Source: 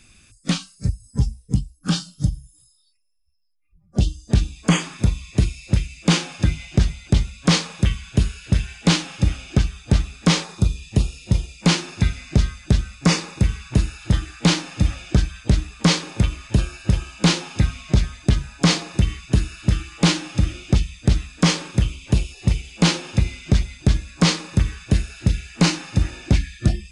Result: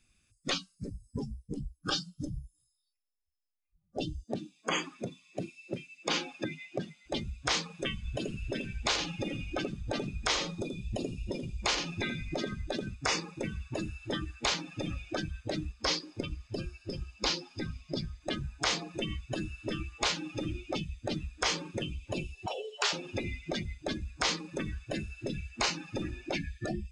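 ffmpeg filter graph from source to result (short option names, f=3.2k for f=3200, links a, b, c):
-filter_complex "[0:a]asettb=1/sr,asplit=3[a][b][c];[a]atrim=end=4.234[d];[b]atrim=start=4.23:end=7.06,asetpts=PTS-STARTPTS,afade=t=in:d=0.004:c=qsin,afade=t=out:st=2.826:d=0.004:c=qsin,highshelf=f=8.9k:g=-5,acompressor=threshold=-16dB:ratio=3:attack=3.2:release=140:knee=1:detection=peak,highpass=f=210:w=0.5412,highpass=f=210:w=1.3066[e];[c]atrim=start=7.056[f];[d][e]acrossfade=d=0.004:c1=hsin:c2=qsin[g];[g][f]acrossfade=d=0.004:c1=qsin:c2=hsin,asettb=1/sr,asplit=3[h][i][j];[h]atrim=end=7.974[k];[i]atrim=start=7.97:end=12.94,asetpts=PTS-STARTPTS,afade=t=in:d=0.004:c=qsin,afade=t=out:st=4.966:d=0.004:c=qsin,lowshelf=f=80:g=9.5,aecho=1:1:83|166|249:0.422|0.0717|0.0122,atrim=end_sample=219177[l];[j]atrim=start=12.936[m];[k][l]acrossfade=d=0.004:c1=hsin:c2=qsin[n];[n][m]acrossfade=d=0.004:c1=qsin:c2=hsin,asettb=1/sr,asplit=3[o][p][q];[o]atrim=end=15.724[r];[p]atrim=start=15.72:end=18.22,asetpts=PTS-STARTPTS,afade=t=in:d=0.004:c=qsin,afade=t=out:st=2.496:d=0.004:c=qsin,equalizer=f=4.9k:t=o:w=0.36:g=7.5,flanger=delay=0.3:depth=2.9:regen=-69:speed=1.4:shape=sinusoidal[s];[q]atrim=start=18.216[t];[r][s]acrossfade=d=0.004:c1=hsin:c2=qsin[u];[u][t]acrossfade=d=0.004:c1=qsin:c2=hsin,asettb=1/sr,asplit=3[v][w][x];[v]atrim=end=22.464[y];[w]atrim=start=22.46:end=22.93,asetpts=PTS-STARTPTS,afade=t=in:d=0.004:c=qsin,afade=t=out:st=0.466:d=0.004:c=qsin,lowpass=9.4k,afreqshift=370[z];[x]atrim=start=22.926[aa];[y][z]acrossfade=d=0.004:c1=hsin:c2=qsin[ab];[ab][aa]acrossfade=d=0.004:c1=qsin:c2=hsin,afftdn=nr=19:nf=-30,afftfilt=real='re*lt(hypot(re,im),0.316)':imag='im*lt(hypot(re,im),0.316)':win_size=1024:overlap=0.75,acompressor=threshold=-27dB:ratio=6"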